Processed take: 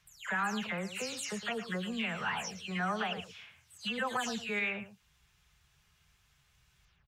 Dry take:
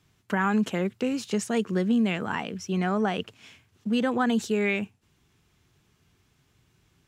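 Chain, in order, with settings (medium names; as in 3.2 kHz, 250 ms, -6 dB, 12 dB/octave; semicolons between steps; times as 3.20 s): delay that grows with frequency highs early, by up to 226 ms; amplifier tone stack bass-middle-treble 10-0-10; peak limiter -30 dBFS, peak gain reduction 7 dB; treble shelf 2.4 kHz -9 dB; delay 111 ms -12.5 dB; trim +8.5 dB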